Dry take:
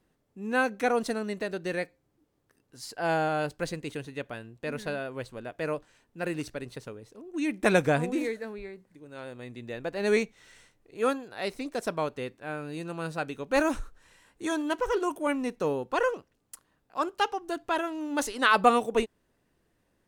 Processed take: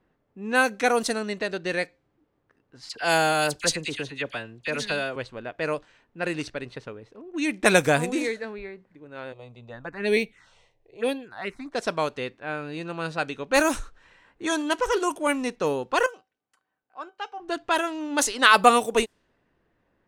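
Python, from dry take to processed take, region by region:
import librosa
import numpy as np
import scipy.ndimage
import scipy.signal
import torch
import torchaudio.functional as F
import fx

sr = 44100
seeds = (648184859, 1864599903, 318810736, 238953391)

y = fx.chain(x, sr, fx.high_shelf(hz=3000.0, db=10.0),
    fx.dispersion(late='lows', ms=43.0, hz=1900.0), at=(2.89, 5.16))
y = fx.chain(y, sr, fx.dynamic_eq(hz=5300.0, q=1.9, threshold_db=-57.0, ratio=4.0, max_db=-5),
    fx.env_phaser(low_hz=210.0, high_hz=1300.0, full_db=-24.5), at=(9.32, 11.73))
y = fx.chain(y, sr, fx.highpass(hz=270.0, slope=6),
    fx.comb_fb(f0_hz=760.0, decay_s=0.18, harmonics='all', damping=0.0, mix_pct=80), at=(16.06, 17.4))
y = fx.low_shelf(y, sr, hz=480.0, db=-4.0)
y = fx.env_lowpass(y, sr, base_hz=1800.0, full_db=-24.0)
y = fx.high_shelf(y, sr, hz=3500.0, db=8.5)
y = y * librosa.db_to_amplitude(5.0)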